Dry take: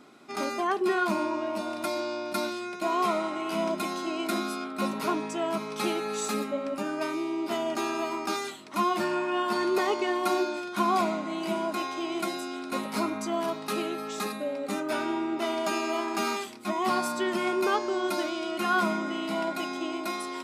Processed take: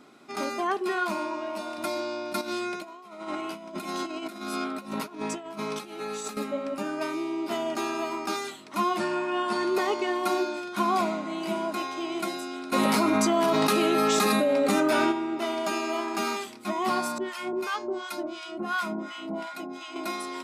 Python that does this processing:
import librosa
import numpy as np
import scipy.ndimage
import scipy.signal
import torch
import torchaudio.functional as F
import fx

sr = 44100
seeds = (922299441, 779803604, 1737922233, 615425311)

y = fx.low_shelf(x, sr, hz=340.0, db=-8.0, at=(0.77, 1.78))
y = fx.over_compress(y, sr, threshold_db=-34.0, ratio=-0.5, at=(2.41, 6.37))
y = fx.resample_bad(y, sr, factor=2, down='none', up='filtered', at=(8.98, 9.69))
y = fx.env_flatten(y, sr, amount_pct=100, at=(12.72, 15.11), fade=0.02)
y = fx.harmonic_tremolo(y, sr, hz=2.8, depth_pct=100, crossover_hz=890.0, at=(17.18, 19.96))